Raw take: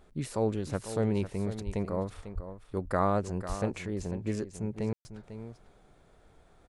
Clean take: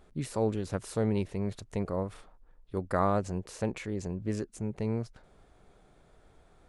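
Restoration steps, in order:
high-pass at the plosives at 0:01.65/0:02.34/0:03.48
ambience match 0:04.93–0:05.05
echo removal 497 ms −11.5 dB

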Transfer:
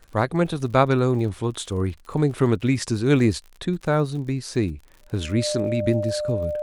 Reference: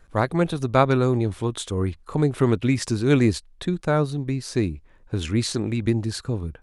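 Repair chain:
click removal
notch filter 600 Hz, Q 30

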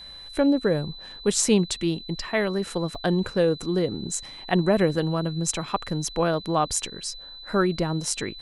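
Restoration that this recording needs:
notch filter 4,000 Hz, Q 30
repair the gap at 0:02.95, 3.5 ms

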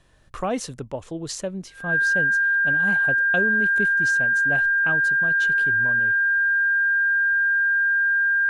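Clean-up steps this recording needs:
hum removal 45.3 Hz, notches 3
notch filter 1,600 Hz, Q 30

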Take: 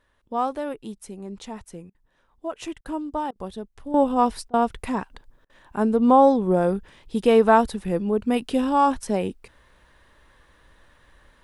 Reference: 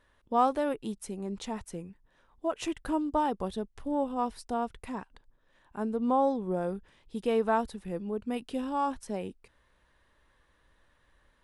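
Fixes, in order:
repair the gap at 0:01.90/0:02.81/0:03.31/0:04.49/0:05.45, 45 ms
level 0 dB, from 0:03.94 −11 dB

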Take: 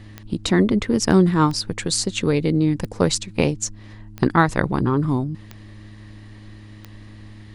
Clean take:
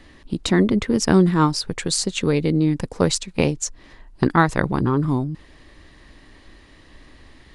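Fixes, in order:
clipped peaks rebuilt −3 dBFS
click removal
hum removal 105.3 Hz, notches 3

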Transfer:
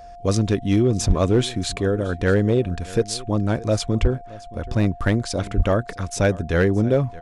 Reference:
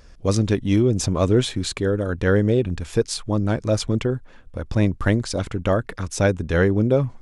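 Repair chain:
clipped peaks rebuilt −10 dBFS
notch filter 700 Hz, Q 30
0:01.07–0:01.19: high-pass filter 140 Hz 24 dB per octave
0:04.01–0:04.13: high-pass filter 140 Hz 24 dB per octave
0:05.56–0:05.68: high-pass filter 140 Hz 24 dB per octave
echo removal 623 ms −20 dB

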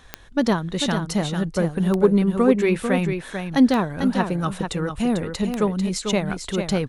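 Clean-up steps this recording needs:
clipped peaks rebuilt −5.5 dBFS
click removal
echo removal 445 ms −7 dB

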